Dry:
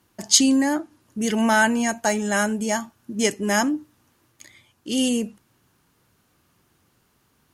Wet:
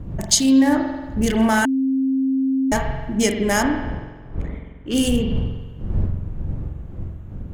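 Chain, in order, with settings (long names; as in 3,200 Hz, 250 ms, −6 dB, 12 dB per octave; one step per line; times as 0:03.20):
adaptive Wiener filter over 9 samples
wind on the microphone 100 Hz −30 dBFS
0:03.68–0:04.94: bass and treble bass −8 dB, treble −14 dB
downward compressor, threshold −21 dBFS, peak gain reduction 10.5 dB
high-shelf EQ 10,000 Hz +7 dB
spring reverb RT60 1.3 s, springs 45 ms, chirp 35 ms, DRR 4 dB
0:01.65–0:02.72: beep over 266 Hz −22 dBFS
level +5.5 dB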